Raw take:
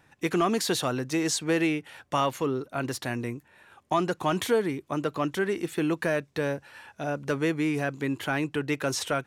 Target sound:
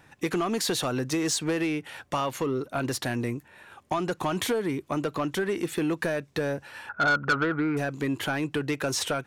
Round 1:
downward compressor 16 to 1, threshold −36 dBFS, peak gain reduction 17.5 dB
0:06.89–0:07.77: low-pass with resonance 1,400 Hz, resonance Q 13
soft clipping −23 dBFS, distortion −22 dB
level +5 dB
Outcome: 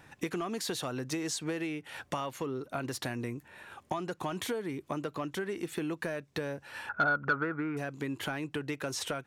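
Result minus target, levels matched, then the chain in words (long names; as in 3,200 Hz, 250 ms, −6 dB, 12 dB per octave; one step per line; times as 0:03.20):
downward compressor: peak gain reduction +9 dB
downward compressor 16 to 1, threshold −26.5 dBFS, peak gain reduction 8.5 dB
0:06.89–0:07.77: low-pass with resonance 1,400 Hz, resonance Q 13
soft clipping −23 dBFS, distortion −14 dB
level +5 dB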